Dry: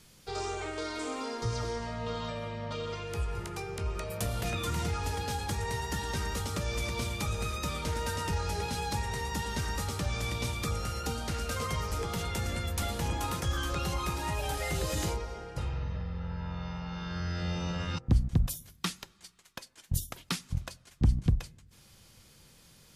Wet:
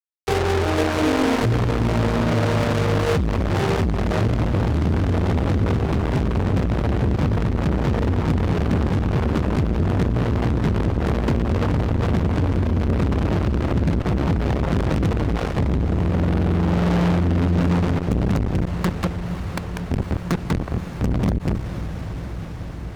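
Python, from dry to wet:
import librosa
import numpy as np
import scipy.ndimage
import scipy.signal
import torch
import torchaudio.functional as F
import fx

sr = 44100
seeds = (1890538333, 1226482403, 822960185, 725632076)

p1 = scipy.ndimage.median_filter(x, 15, mode='constant')
p2 = fx.env_lowpass_down(p1, sr, base_hz=380.0, full_db=-32.0)
p3 = fx.highpass(p2, sr, hz=95.0, slope=6)
p4 = fx.low_shelf(p3, sr, hz=240.0, db=8.5)
p5 = fx.rider(p4, sr, range_db=5, speed_s=2.0)
p6 = p4 + (p5 * 10.0 ** (-1.0 / 20.0))
p7 = p6 + 10.0 ** (-7.5 / 20.0) * np.pad(p6, (int(194 * sr / 1000.0), 0))[:len(p6)]
p8 = fx.fuzz(p7, sr, gain_db=39.0, gate_db=-30.0)
p9 = p8 + fx.echo_diffused(p8, sr, ms=548, feedback_pct=76, wet_db=-12.5, dry=0)
y = fx.transformer_sat(p9, sr, knee_hz=270.0)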